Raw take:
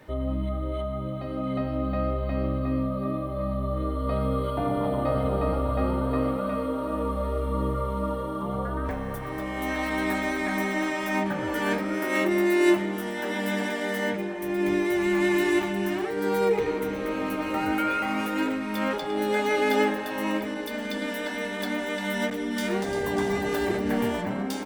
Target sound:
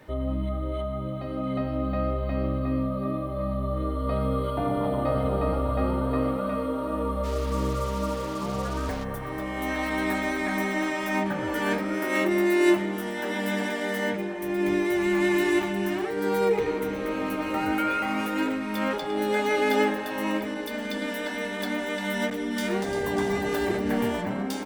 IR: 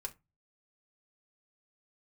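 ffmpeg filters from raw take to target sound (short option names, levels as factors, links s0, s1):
-filter_complex "[0:a]asplit=3[s0][s1][s2];[s0]afade=t=out:st=7.23:d=0.02[s3];[s1]acrusher=bits=5:mix=0:aa=0.5,afade=t=in:st=7.23:d=0.02,afade=t=out:st=9.03:d=0.02[s4];[s2]afade=t=in:st=9.03:d=0.02[s5];[s3][s4][s5]amix=inputs=3:normalize=0"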